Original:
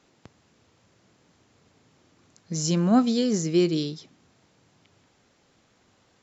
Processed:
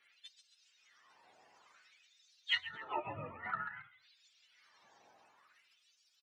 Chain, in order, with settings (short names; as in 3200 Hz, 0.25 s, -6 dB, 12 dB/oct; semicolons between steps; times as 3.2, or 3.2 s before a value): spectrum mirrored in octaves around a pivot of 680 Hz; treble ducked by the level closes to 310 Hz, closed at -23.5 dBFS; frequency-shifting echo 0.136 s, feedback 46%, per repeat -52 Hz, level -11 dB; LFO high-pass sine 0.54 Hz 500–3300 Hz; formant shift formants +5 st